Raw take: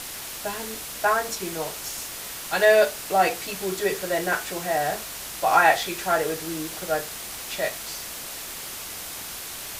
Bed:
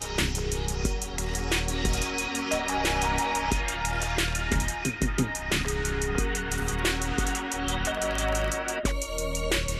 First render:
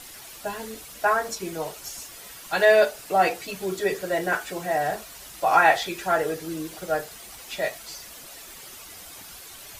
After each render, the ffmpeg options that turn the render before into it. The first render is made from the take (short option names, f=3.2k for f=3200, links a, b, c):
-af "afftdn=nr=10:nf=-36"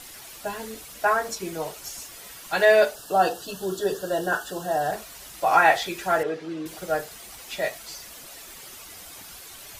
-filter_complex "[0:a]asplit=3[a][b][c];[a]afade=t=out:st=2.94:d=0.02[d];[b]asuperstop=centerf=2200:order=12:qfactor=2.5,afade=t=in:st=2.94:d=0.02,afade=t=out:st=4.91:d=0.02[e];[c]afade=t=in:st=4.91:d=0.02[f];[d][e][f]amix=inputs=3:normalize=0,asettb=1/sr,asplit=3[g][h][i];[g]atrim=end=6.234[j];[h]atrim=start=6.23:end=6.66,asetpts=PTS-STARTPTS,afade=t=in:d=0.004:c=qsin,afade=t=out:st=0.426:d=0.004:c=qsin,highpass=180,lowpass=3.4k[k];[i]atrim=start=6.656[l];[j][k]acrossfade=d=0.004:c1=hsin:c2=qsin[m];[m][l]acrossfade=d=0.004:c1=qsin:c2=hsin"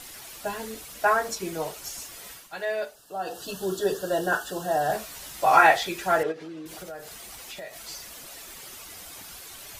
-filter_complex "[0:a]asettb=1/sr,asplit=3[a][b][c];[a]atrim=end=4.884[d];[b]atrim=start=4.88:end=5.67,asetpts=PTS-STARTPTS,afade=t=in:d=0.004:c=qsin,afade=t=out:st=0.786:d=0.004:c=qsin,asplit=2[e][f];[f]adelay=14,volume=-2.5dB[g];[e][g]amix=inputs=2:normalize=0,atrim=end_sample=34839[h];[c]atrim=start=5.666[i];[d][h]acrossfade=d=0.004:c1=hsin:c2=qsin[j];[j][i]acrossfade=d=0.004:c1=qsin:c2=hsin,asplit=3[k][l][m];[k]afade=t=out:st=6.31:d=0.02[n];[l]acompressor=threshold=-36dB:ratio=6:attack=3.2:release=140:knee=1:detection=peak,afade=t=in:st=6.31:d=0.02,afade=t=out:st=7.87:d=0.02[o];[m]afade=t=in:st=7.87:d=0.02[p];[n][o][p]amix=inputs=3:normalize=0,asplit=3[q][r][s];[q]atrim=end=2.49,asetpts=PTS-STARTPTS,afade=t=out:st=2.31:d=0.18:silence=0.237137[t];[r]atrim=start=2.49:end=3.25,asetpts=PTS-STARTPTS,volume=-12.5dB[u];[s]atrim=start=3.25,asetpts=PTS-STARTPTS,afade=t=in:d=0.18:silence=0.237137[v];[t][u][v]concat=n=3:v=0:a=1"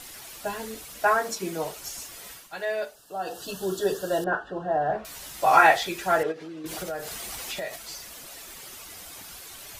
-filter_complex "[0:a]asettb=1/sr,asplit=3[a][b][c];[a]atrim=end=1.194[d];[b]atrim=start=1.19:end=1.64,asetpts=PTS-STARTPTS,afade=t=in:d=0.004:c=qsin,afade=t=out:st=0.446:d=0.004:c=qsin,lowshelf=f=130:t=q:w=1.5:g=-9.5[e];[c]atrim=start=1.636[f];[d][e]acrossfade=d=0.004:c1=hsin:c2=qsin[g];[g][f]acrossfade=d=0.004:c1=qsin:c2=hsin,asettb=1/sr,asplit=3[h][i][j];[h]atrim=end=4.244[k];[i]atrim=start=4.24:end=5.05,asetpts=PTS-STARTPTS,afade=t=in:d=0.004:c=qsin,afade=t=out:st=0.806:d=0.004:c=qsin,lowpass=1.6k[l];[j]atrim=start=5.046[m];[k][l]acrossfade=d=0.004:c1=hsin:c2=qsin[n];[n][m]acrossfade=d=0.004:c1=qsin:c2=hsin,asettb=1/sr,asplit=3[o][p][q];[o]atrim=end=6.644[r];[p]atrim=start=6.64:end=7.76,asetpts=PTS-STARTPTS,afade=t=in:d=0.004:c=qsin,afade=t=out:st=1.116:d=0.004:c=qsin,acontrast=55[s];[q]atrim=start=7.756[t];[r][s]acrossfade=d=0.004:c1=hsin:c2=qsin[u];[u][t]acrossfade=d=0.004:c1=qsin:c2=hsin"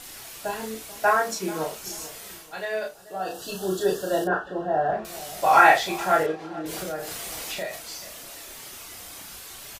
-filter_complex "[0:a]asplit=2[a][b];[b]adelay=32,volume=-3.5dB[c];[a][c]amix=inputs=2:normalize=0,asplit=2[d][e];[e]adelay=437,lowpass=f=1k:p=1,volume=-15dB,asplit=2[f][g];[g]adelay=437,lowpass=f=1k:p=1,volume=0.4,asplit=2[h][i];[i]adelay=437,lowpass=f=1k:p=1,volume=0.4,asplit=2[j][k];[k]adelay=437,lowpass=f=1k:p=1,volume=0.4[l];[d][f][h][j][l]amix=inputs=5:normalize=0"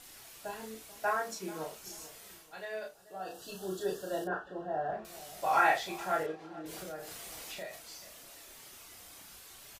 -af "volume=-11dB"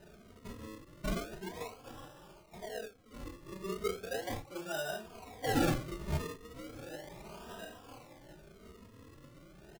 -filter_complex "[0:a]acrusher=samples=39:mix=1:aa=0.000001:lfo=1:lforange=39:lforate=0.36,asplit=2[a][b];[b]adelay=2.9,afreqshift=0.83[c];[a][c]amix=inputs=2:normalize=1"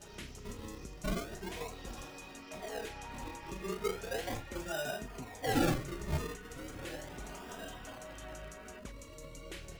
-filter_complex "[1:a]volume=-20.5dB[a];[0:a][a]amix=inputs=2:normalize=0"